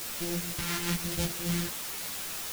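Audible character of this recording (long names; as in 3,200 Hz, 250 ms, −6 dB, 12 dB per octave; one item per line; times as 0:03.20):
a buzz of ramps at a fixed pitch in blocks of 256 samples
phaser sweep stages 2, 0.97 Hz, lowest notch 550–1,200 Hz
a quantiser's noise floor 6 bits, dither triangular
a shimmering, thickened sound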